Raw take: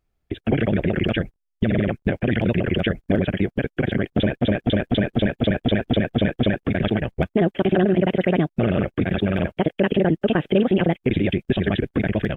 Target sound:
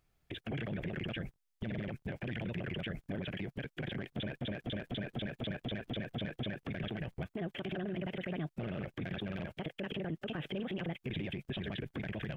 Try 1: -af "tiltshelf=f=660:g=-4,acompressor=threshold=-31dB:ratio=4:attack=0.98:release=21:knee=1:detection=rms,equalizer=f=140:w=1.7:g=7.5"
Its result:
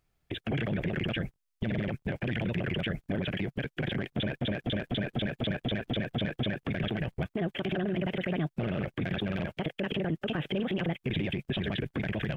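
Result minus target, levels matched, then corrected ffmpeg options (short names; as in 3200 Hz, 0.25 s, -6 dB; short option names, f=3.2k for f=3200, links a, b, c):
compressor: peak gain reduction -7.5 dB
-af "tiltshelf=f=660:g=-4,acompressor=threshold=-41dB:ratio=4:attack=0.98:release=21:knee=1:detection=rms,equalizer=f=140:w=1.7:g=7.5"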